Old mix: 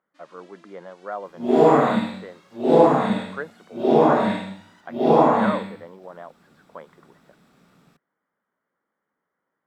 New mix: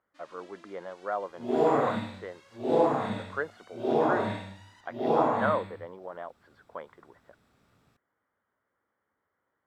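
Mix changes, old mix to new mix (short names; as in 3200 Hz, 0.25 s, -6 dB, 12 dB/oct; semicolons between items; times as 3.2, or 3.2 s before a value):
second sound -8.5 dB; master: add resonant low shelf 130 Hz +7 dB, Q 3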